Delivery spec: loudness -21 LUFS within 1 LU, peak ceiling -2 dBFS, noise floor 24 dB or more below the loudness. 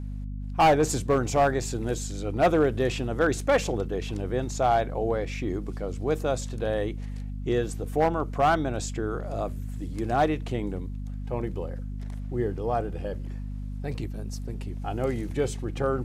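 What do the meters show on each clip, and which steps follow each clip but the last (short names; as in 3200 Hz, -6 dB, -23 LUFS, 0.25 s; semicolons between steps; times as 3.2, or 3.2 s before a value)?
clipped 0.7%; flat tops at -15.0 dBFS; hum 50 Hz; harmonics up to 250 Hz; hum level -31 dBFS; loudness -28.0 LUFS; peak -15.0 dBFS; loudness target -21.0 LUFS
-> clip repair -15 dBFS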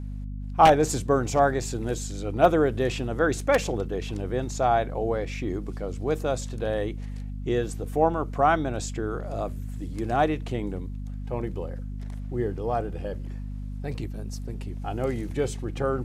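clipped 0.0%; hum 50 Hz; harmonics up to 250 Hz; hum level -31 dBFS
-> notches 50/100/150/200/250 Hz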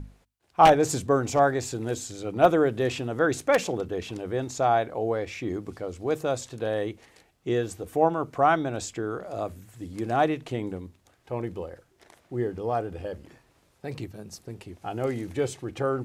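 hum none; loudness -26.5 LUFS; peak -5.5 dBFS; loudness target -21.0 LUFS
-> gain +5.5 dB; limiter -2 dBFS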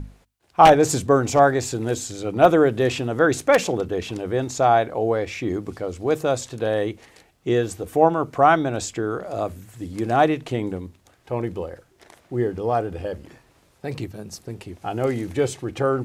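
loudness -21.5 LUFS; peak -2.0 dBFS; noise floor -59 dBFS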